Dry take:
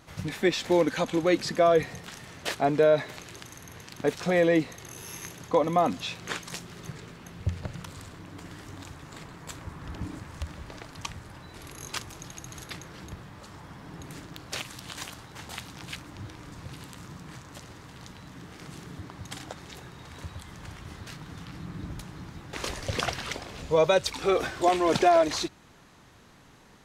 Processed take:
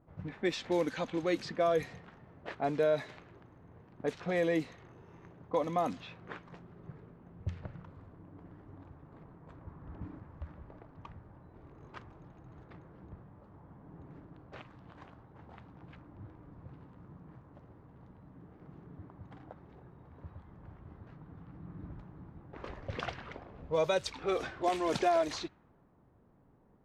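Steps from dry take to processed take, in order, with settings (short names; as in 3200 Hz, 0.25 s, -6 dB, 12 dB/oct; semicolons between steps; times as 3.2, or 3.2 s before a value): low-pass opened by the level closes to 680 Hz, open at -18.5 dBFS; gain -8 dB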